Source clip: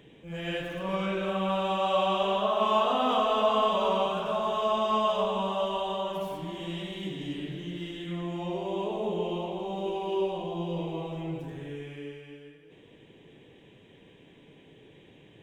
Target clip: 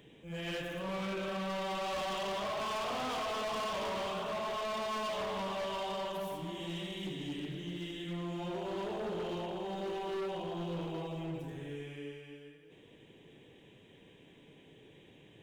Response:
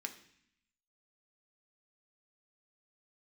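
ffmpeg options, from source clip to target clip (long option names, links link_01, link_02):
-af "highshelf=frequency=5100:gain=6,volume=30.5dB,asoftclip=hard,volume=-30.5dB,volume=-4dB"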